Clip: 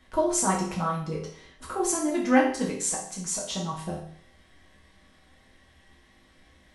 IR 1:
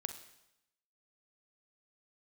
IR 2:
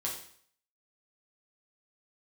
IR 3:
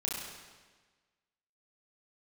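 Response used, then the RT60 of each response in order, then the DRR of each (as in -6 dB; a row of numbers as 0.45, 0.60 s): 2; 0.85, 0.55, 1.4 s; 8.0, -4.0, -4.0 dB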